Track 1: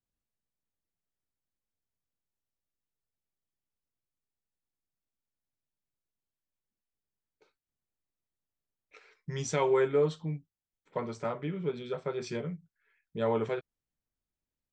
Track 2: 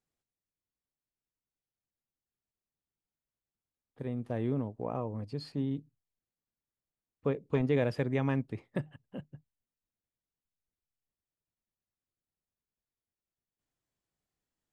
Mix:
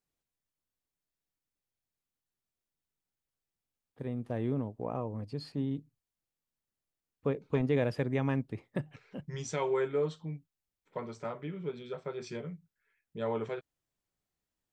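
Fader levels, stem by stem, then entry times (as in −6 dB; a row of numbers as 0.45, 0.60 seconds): −4.5, −0.5 decibels; 0.00, 0.00 seconds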